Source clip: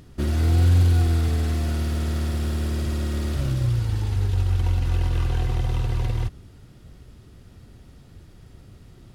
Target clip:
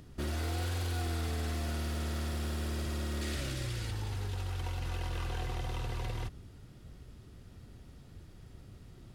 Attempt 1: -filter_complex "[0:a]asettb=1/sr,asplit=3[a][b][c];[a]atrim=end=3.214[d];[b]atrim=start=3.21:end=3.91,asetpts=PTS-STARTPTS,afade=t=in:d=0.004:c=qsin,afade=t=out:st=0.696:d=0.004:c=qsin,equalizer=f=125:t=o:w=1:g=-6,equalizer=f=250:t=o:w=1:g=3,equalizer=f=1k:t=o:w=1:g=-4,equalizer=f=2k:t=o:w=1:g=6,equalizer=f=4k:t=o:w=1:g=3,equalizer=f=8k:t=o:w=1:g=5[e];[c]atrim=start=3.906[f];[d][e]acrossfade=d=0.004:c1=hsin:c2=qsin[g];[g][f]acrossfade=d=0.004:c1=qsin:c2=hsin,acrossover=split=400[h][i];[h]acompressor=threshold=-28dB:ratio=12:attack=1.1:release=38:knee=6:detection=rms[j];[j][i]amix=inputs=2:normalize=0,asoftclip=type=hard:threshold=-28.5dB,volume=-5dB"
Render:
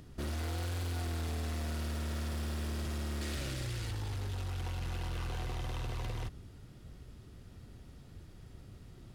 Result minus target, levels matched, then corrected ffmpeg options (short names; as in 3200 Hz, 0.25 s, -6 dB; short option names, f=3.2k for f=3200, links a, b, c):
hard clip: distortion +24 dB
-filter_complex "[0:a]asettb=1/sr,asplit=3[a][b][c];[a]atrim=end=3.214[d];[b]atrim=start=3.21:end=3.91,asetpts=PTS-STARTPTS,afade=t=in:d=0.004:c=qsin,afade=t=out:st=0.696:d=0.004:c=qsin,equalizer=f=125:t=o:w=1:g=-6,equalizer=f=250:t=o:w=1:g=3,equalizer=f=1k:t=o:w=1:g=-4,equalizer=f=2k:t=o:w=1:g=6,equalizer=f=4k:t=o:w=1:g=3,equalizer=f=8k:t=o:w=1:g=5[e];[c]atrim=start=3.906[f];[d][e]acrossfade=d=0.004:c1=hsin:c2=qsin[g];[g][f]acrossfade=d=0.004:c1=qsin:c2=hsin,acrossover=split=400[h][i];[h]acompressor=threshold=-28dB:ratio=12:attack=1.1:release=38:knee=6:detection=rms[j];[j][i]amix=inputs=2:normalize=0,asoftclip=type=hard:threshold=-22.5dB,volume=-5dB"